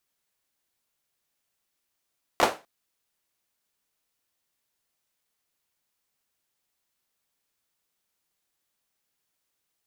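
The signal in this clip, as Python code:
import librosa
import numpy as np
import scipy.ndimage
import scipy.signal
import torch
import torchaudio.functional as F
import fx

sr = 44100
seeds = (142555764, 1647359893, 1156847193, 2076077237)

y = fx.drum_clap(sr, seeds[0], length_s=0.25, bursts=3, spacing_ms=14, hz=620.0, decay_s=0.28)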